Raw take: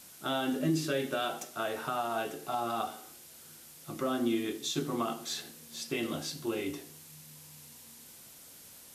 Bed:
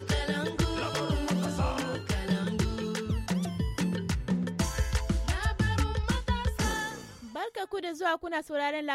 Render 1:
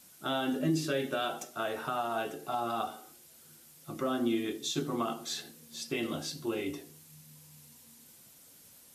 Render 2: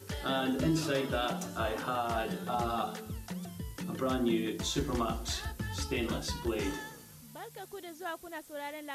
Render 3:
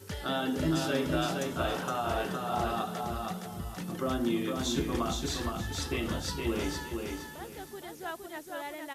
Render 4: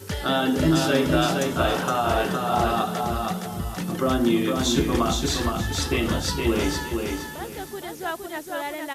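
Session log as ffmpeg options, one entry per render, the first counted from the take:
-af "afftdn=nr=6:nf=-53"
-filter_complex "[1:a]volume=-10.5dB[a];[0:a][a]amix=inputs=2:normalize=0"
-af "aecho=1:1:465|930|1395|1860:0.631|0.183|0.0531|0.0154"
-af "volume=9dB"

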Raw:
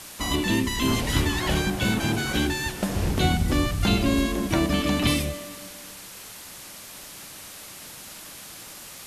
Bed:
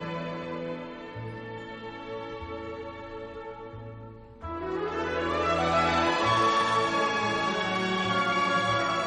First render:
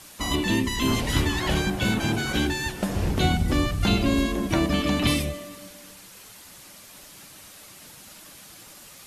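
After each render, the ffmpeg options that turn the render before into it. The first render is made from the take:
-af "afftdn=nr=6:nf=-42"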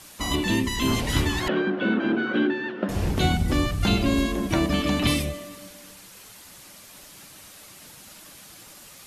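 -filter_complex "[0:a]asettb=1/sr,asplit=3[a][b][c];[a]atrim=end=1.484[d];[b]atrim=start=1.48:end=2.89,asetpts=PTS-STARTPTS,afade=t=in:d=0.004:c=qsin,afade=t=out:st=1.406:d=0.004:c=qsin,highpass=f=210:w=0.5412,highpass=f=210:w=1.3066,equalizer=f=240:t=q:w=4:g=7,equalizer=f=350:t=q:w=4:g=6,equalizer=f=530:t=q:w=4:g=4,equalizer=f=820:t=q:w=4:g=-7,equalizer=f=1.4k:t=q:w=4:g=5,equalizer=f=2.3k:t=q:w=4:g=-7,lowpass=f=2.8k:w=0.5412,lowpass=f=2.8k:w=1.3066[e];[c]atrim=start=2.886[f];[d][e]acrossfade=d=0.004:c1=hsin:c2=qsin[g];[g][f]acrossfade=d=0.004:c1=qsin:c2=hsin"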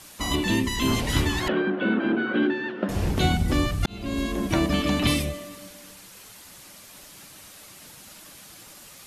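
-filter_complex "[0:a]asettb=1/sr,asplit=3[a][b][c];[a]atrim=end=1.524[d];[b]atrim=start=1.52:end=2.43,asetpts=PTS-STARTPTS,afade=t=in:d=0.004:c=qsin,afade=t=out:st=0.906:d=0.004:c=qsin,highpass=110,lowpass=3.7k[e];[c]atrim=start=2.426[f];[d][e]acrossfade=d=0.004:c1=hsin:c2=qsin[g];[g][f]acrossfade=d=0.004:c1=qsin:c2=hsin,asplit=2[h][i];[h]atrim=end=3.86,asetpts=PTS-STARTPTS,afade=t=out:st=3.856:d=0.004:c=hsin[j];[i]atrim=start=3.86,asetpts=PTS-STARTPTS,afade=t=in:d=0.56[k];[j][k]concat=n=2:v=0:a=1"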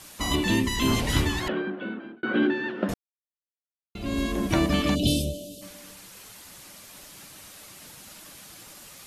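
-filter_complex "[0:a]asplit=3[a][b][c];[a]afade=t=out:st=4.94:d=0.02[d];[b]asuperstop=centerf=1400:order=12:qfactor=0.63,afade=t=in:st=4.94:d=0.02,afade=t=out:st=5.61:d=0.02[e];[c]afade=t=in:st=5.61:d=0.02[f];[d][e][f]amix=inputs=3:normalize=0,asplit=4[g][h][i][j];[g]atrim=end=2.23,asetpts=PTS-STARTPTS,afade=t=out:st=1.12:d=1.11[k];[h]atrim=start=2.23:end=2.94,asetpts=PTS-STARTPTS,afade=t=in:d=0.004:c=hsin,afade=t=out:st=0.706:d=0.004:c=hsin[l];[i]atrim=start=2.94:end=3.95,asetpts=PTS-STARTPTS,volume=0[m];[j]atrim=start=3.95,asetpts=PTS-STARTPTS,afade=t=in:d=0.004:c=hsin[n];[k][l][m][n]concat=n=4:v=0:a=1"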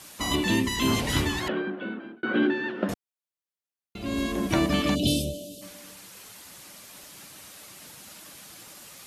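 -af "highpass=f=92:p=1"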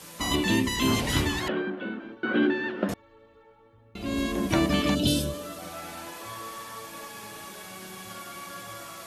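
-filter_complex "[1:a]volume=-16dB[a];[0:a][a]amix=inputs=2:normalize=0"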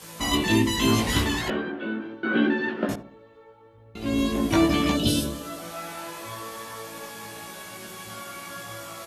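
-filter_complex "[0:a]asplit=2[a][b];[b]adelay=18,volume=-2dB[c];[a][c]amix=inputs=2:normalize=0,asplit=2[d][e];[e]adelay=73,lowpass=f=890:p=1,volume=-11.5dB,asplit=2[f][g];[g]adelay=73,lowpass=f=890:p=1,volume=0.46,asplit=2[h][i];[i]adelay=73,lowpass=f=890:p=1,volume=0.46,asplit=2[j][k];[k]adelay=73,lowpass=f=890:p=1,volume=0.46,asplit=2[l][m];[m]adelay=73,lowpass=f=890:p=1,volume=0.46[n];[d][f][h][j][l][n]amix=inputs=6:normalize=0"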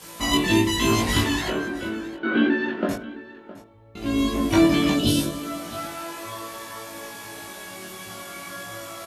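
-filter_complex "[0:a]asplit=2[a][b];[b]adelay=21,volume=-4dB[c];[a][c]amix=inputs=2:normalize=0,aecho=1:1:664:0.126"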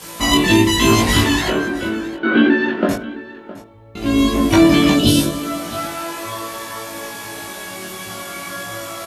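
-af "volume=7.5dB,alimiter=limit=-2dB:level=0:latency=1"

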